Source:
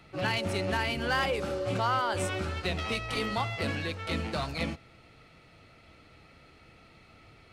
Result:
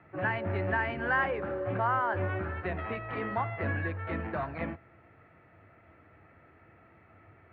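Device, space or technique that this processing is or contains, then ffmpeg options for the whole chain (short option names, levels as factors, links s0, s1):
bass cabinet: -filter_complex "[0:a]asettb=1/sr,asplit=3[s0][s1][s2];[s0]atrim=end=0.534[s3];[s1]atrim=start=0.53:end=1.38,asetpts=PTS-STARTPTS,afade=t=in:d=0.004:c=qsin,afade=t=out:st=0.846:d=0.004:c=qsin,highshelf=f=5200:g=9.5[s4];[s2]atrim=start=1.376[s5];[s3][s4]acrossfade=d=0.004:c1=hsin:c2=qsin[s6];[s6][s5]acrossfade=d=0.004:c1=qsin:c2=hsin,highpass=75,equalizer=f=94:t=q:w=4:g=9,equalizer=f=340:t=q:w=4:g=5,equalizer=f=670:t=q:w=4:g=5,equalizer=f=1000:t=q:w=4:g=5,equalizer=f=1700:t=q:w=4:g=9,lowpass=f=2100:w=0.5412,lowpass=f=2100:w=1.3066,volume=0.631"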